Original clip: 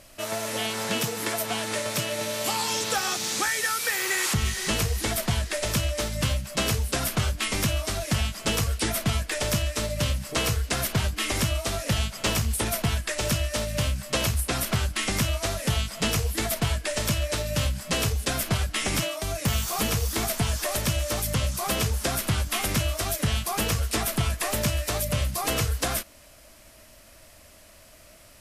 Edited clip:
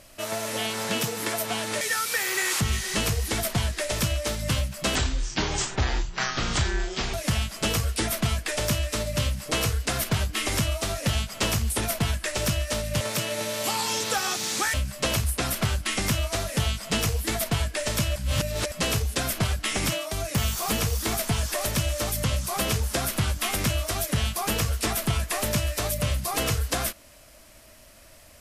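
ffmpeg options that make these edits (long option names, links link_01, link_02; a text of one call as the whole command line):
ffmpeg -i in.wav -filter_complex "[0:a]asplit=8[link_01][link_02][link_03][link_04][link_05][link_06][link_07][link_08];[link_01]atrim=end=1.812[link_09];[link_02]atrim=start=3.538:end=6.684[link_10];[link_03]atrim=start=6.68:end=7.97,asetpts=PTS-STARTPTS,asetrate=26019,aresample=44100,atrim=end_sample=96422,asetpts=PTS-STARTPTS[link_11];[link_04]atrim=start=7.966:end=13.842[link_12];[link_05]atrim=start=1.808:end=3.542[link_13];[link_06]atrim=start=13.838:end=17.262[link_14];[link_07]atrim=start=17.258:end=17.822,asetpts=PTS-STARTPTS,areverse[link_15];[link_08]atrim=start=17.818[link_16];[link_09][link_10]acrossfade=duration=0.004:curve1=hsin:curve2=hsin[link_17];[link_17][link_11]acrossfade=duration=0.004:curve1=hsin:curve2=hsin[link_18];[link_18][link_12]acrossfade=duration=0.004:curve1=hsin:curve2=hsin[link_19];[link_19][link_13]acrossfade=duration=0.004:curve1=hsin:curve2=hsin[link_20];[link_20][link_14]acrossfade=duration=0.004:curve1=hsin:curve2=hsin[link_21];[link_21][link_15]acrossfade=duration=0.004:curve1=hsin:curve2=hsin[link_22];[link_22][link_16]acrossfade=duration=0.004:curve1=hsin:curve2=hsin" out.wav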